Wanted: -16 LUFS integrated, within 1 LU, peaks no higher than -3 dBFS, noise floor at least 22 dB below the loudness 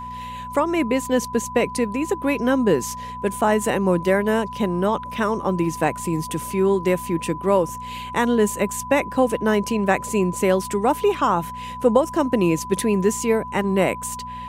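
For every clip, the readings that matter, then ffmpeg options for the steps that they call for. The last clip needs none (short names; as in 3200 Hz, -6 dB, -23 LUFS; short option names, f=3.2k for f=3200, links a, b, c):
hum 60 Hz; harmonics up to 240 Hz; hum level -38 dBFS; steady tone 1000 Hz; tone level -31 dBFS; loudness -21.5 LUFS; peak -4.0 dBFS; loudness target -16.0 LUFS
-> -af "bandreject=f=60:t=h:w=4,bandreject=f=120:t=h:w=4,bandreject=f=180:t=h:w=4,bandreject=f=240:t=h:w=4"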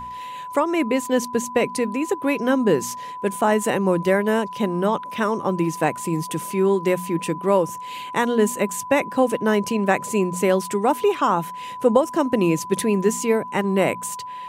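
hum none; steady tone 1000 Hz; tone level -31 dBFS
-> -af "bandreject=f=1k:w=30"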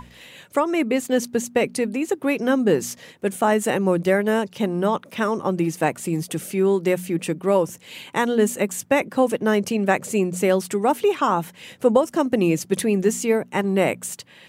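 steady tone none; loudness -22.0 LUFS; peak -5.0 dBFS; loudness target -16.0 LUFS
-> -af "volume=6dB,alimiter=limit=-3dB:level=0:latency=1"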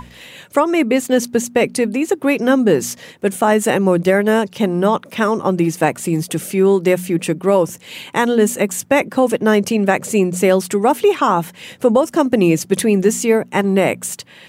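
loudness -16.5 LUFS; peak -3.0 dBFS; noise floor -44 dBFS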